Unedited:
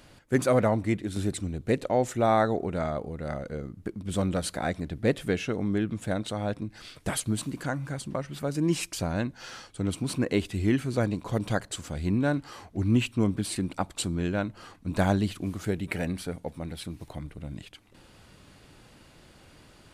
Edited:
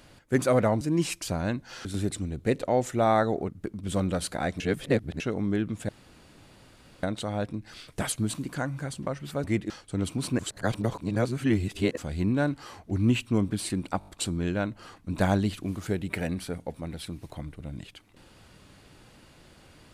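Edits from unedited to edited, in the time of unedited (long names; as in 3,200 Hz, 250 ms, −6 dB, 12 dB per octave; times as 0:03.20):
0:00.81–0:01.07: swap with 0:08.52–0:09.56
0:02.71–0:03.71: remove
0:04.82–0:05.42: reverse
0:06.11: splice in room tone 1.14 s
0:10.25–0:11.83: reverse
0:13.85: stutter 0.02 s, 5 plays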